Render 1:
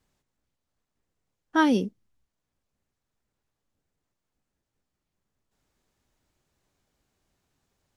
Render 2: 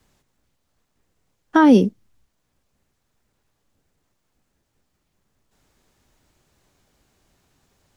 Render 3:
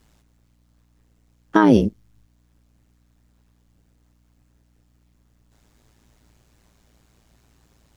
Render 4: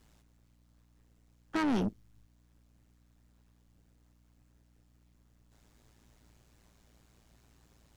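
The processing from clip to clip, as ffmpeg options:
-filter_complex "[0:a]acrossover=split=190|1600[s0][s1][s2];[s2]acompressor=threshold=0.01:ratio=6[s3];[s0][s1][s3]amix=inputs=3:normalize=0,alimiter=level_in=4.73:limit=0.891:release=50:level=0:latency=1,volume=0.75"
-af "acompressor=threshold=0.2:ratio=2.5,tremolo=f=110:d=0.824,aeval=exprs='val(0)+0.000501*(sin(2*PI*60*n/s)+sin(2*PI*2*60*n/s)/2+sin(2*PI*3*60*n/s)/3+sin(2*PI*4*60*n/s)/4+sin(2*PI*5*60*n/s)/5)':c=same,volume=2"
-af "aeval=exprs='(tanh(12.6*val(0)+0.25)-tanh(0.25))/12.6':c=same,volume=0.596"

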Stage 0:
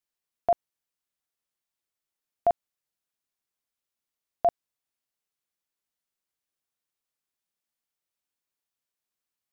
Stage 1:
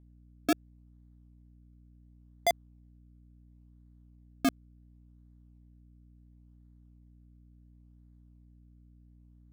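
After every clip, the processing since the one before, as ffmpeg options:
-af "acrusher=samples=32:mix=1:aa=0.000001:lfo=1:lforange=32:lforate=0.71,aeval=exprs='val(0)+0.00251*(sin(2*PI*60*n/s)+sin(2*PI*2*60*n/s)/2+sin(2*PI*3*60*n/s)/3+sin(2*PI*4*60*n/s)/4+sin(2*PI*5*60*n/s)/5)':c=same,volume=0.631"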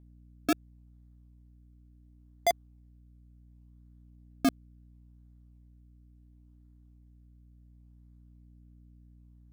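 -af "aphaser=in_gain=1:out_gain=1:delay=3.2:decay=0.21:speed=0.23:type=triangular"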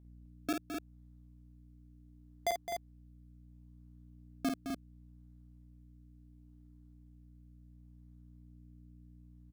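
-filter_complex "[0:a]alimiter=limit=0.0708:level=0:latency=1:release=498,asplit=2[s0][s1];[s1]aecho=0:1:49.56|212.8|256.6:0.562|0.355|0.501[s2];[s0][s2]amix=inputs=2:normalize=0,volume=0.708"

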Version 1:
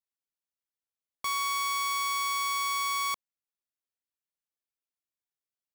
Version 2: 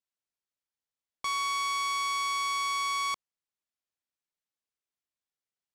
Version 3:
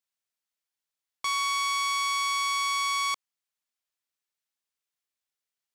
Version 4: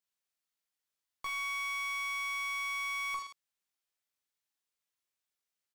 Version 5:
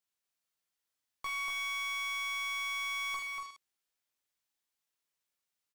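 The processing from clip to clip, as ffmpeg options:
-af "lowpass=8300"
-af "tiltshelf=f=730:g=-4.5"
-filter_complex "[0:a]aecho=1:1:20|46|79.8|123.7|180.9:0.631|0.398|0.251|0.158|0.1,asoftclip=type=tanh:threshold=0.0376,acrossover=split=2700[s0][s1];[s1]acompressor=threshold=0.00891:ratio=4:attack=1:release=60[s2];[s0][s2]amix=inputs=2:normalize=0,volume=0.708"
-af "aecho=1:1:239:0.631"

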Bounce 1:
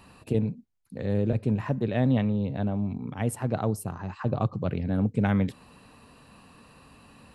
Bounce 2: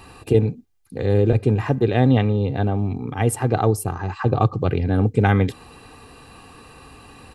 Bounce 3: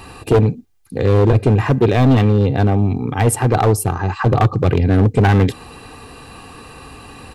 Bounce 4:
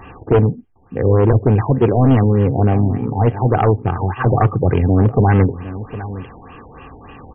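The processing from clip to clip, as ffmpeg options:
-af "aecho=1:1:2.5:0.54,volume=2.66"
-af "asoftclip=type=hard:threshold=0.188,volume=2.24"
-af "aecho=1:1:758:0.178,afftfilt=real='re*lt(b*sr/1024,950*pow(3400/950,0.5+0.5*sin(2*PI*3.4*pts/sr)))':imag='im*lt(b*sr/1024,950*pow(3400/950,0.5+0.5*sin(2*PI*3.4*pts/sr)))':win_size=1024:overlap=0.75"

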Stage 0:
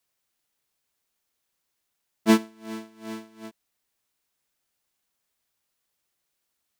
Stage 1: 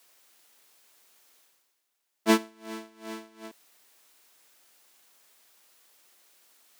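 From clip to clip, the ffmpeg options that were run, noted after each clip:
-af "highpass=300,areverse,acompressor=mode=upward:threshold=0.00501:ratio=2.5,areverse"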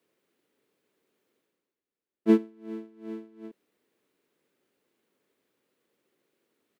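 -af "firequalizer=gain_entry='entry(430,0);entry(710,-16);entry(2100,-16);entry(5400,-26)':delay=0.05:min_phase=1,volume=1.5"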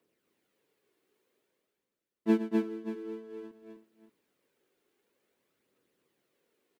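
-af "aphaser=in_gain=1:out_gain=1:delay=2.9:decay=0.46:speed=0.52:type=triangular,aecho=1:1:113|252|322|581:0.251|0.708|0.126|0.251,volume=0.668"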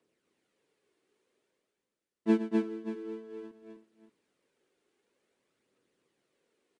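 -af "aresample=22050,aresample=44100"

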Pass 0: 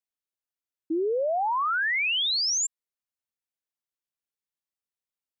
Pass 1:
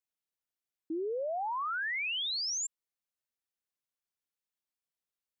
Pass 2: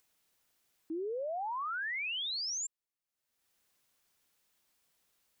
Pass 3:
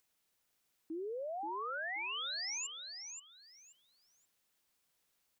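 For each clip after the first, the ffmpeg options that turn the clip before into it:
-af "alimiter=level_in=1.78:limit=0.0631:level=0:latency=1,volume=0.562,volume=0.794"
-af "acompressor=mode=upward:threshold=0.00158:ratio=2.5,volume=0.75"
-af "aecho=1:1:529|1058|1587:0.447|0.0983|0.0216,volume=0.631"

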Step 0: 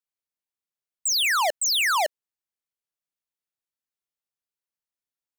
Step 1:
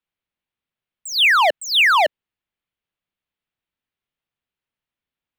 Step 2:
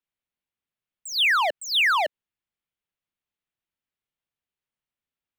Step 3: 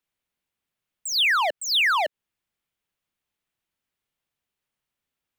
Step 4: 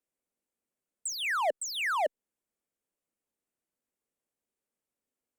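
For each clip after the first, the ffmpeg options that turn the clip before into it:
-filter_complex "[0:a]highshelf=f=4400:t=q:w=1.5:g=-12,acrossover=split=250|3700[s0][s1][s2];[s0]acontrast=73[s3];[s3][s1][s2]amix=inputs=3:normalize=0,volume=2.24"
-af "alimiter=limit=0.282:level=0:latency=1:release=80,volume=0.562"
-af "acompressor=threshold=0.0316:ratio=2,volume=2"
-af "equalizer=f=125:t=o:w=1:g=-4,equalizer=f=250:t=o:w=1:g=9,equalizer=f=500:t=o:w=1:g=10,equalizer=f=4000:t=o:w=1:g=-10,equalizer=f=8000:t=o:w=1:g=9,volume=0.355" -ar 48000 -c:a libopus -b:a 128k

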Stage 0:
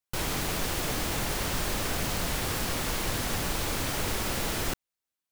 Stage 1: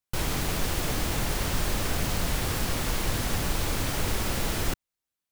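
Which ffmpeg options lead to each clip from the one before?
-af "lowshelf=f=160:g=6"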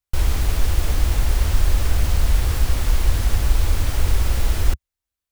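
-af "lowshelf=f=100:t=q:w=1.5:g=12.5"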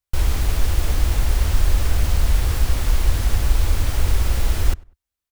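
-filter_complex "[0:a]asplit=2[s0][s1];[s1]adelay=98,lowpass=f=1900:p=1,volume=0.0668,asplit=2[s2][s3];[s3]adelay=98,lowpass=f=1900:p=1,volume=0.27[s4];[s0][s2][s4]amix=inputs=3:normalize=0"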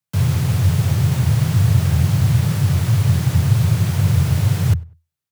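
-af "afreqshift=82"

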